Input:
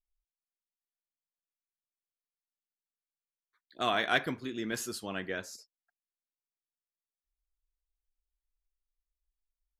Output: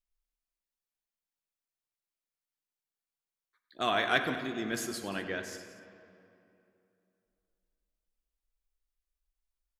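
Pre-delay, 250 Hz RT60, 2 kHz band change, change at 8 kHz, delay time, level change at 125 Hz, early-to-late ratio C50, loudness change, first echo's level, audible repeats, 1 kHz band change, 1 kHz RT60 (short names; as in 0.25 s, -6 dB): 11 ms, 2.9 s, +1.0 dB, +0.5 dB, 97 ms, +0.5 dB, 7.0 dB, +0.5 dB, -14.5 dB, 3, +1.0 dB, 2.8 s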